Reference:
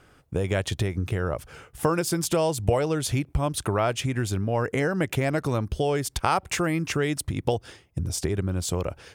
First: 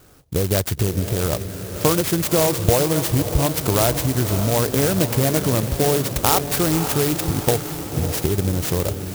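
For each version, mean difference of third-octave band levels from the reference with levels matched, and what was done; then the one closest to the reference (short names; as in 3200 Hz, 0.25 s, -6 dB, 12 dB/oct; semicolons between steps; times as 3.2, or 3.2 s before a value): 10.5 dB: on a send: diffused feedback echo 0.565 s, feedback 60%, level -9 dB; on the sum: clock jitter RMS 0.14 ms; gain +5.5 dB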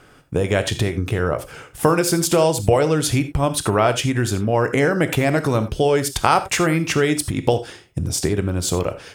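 2.5 dB: bell 66 Hz -8 dB 0.9 oct; non-linear reverb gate 0.11 s flat, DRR 9.5 dB; gain +7 dB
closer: second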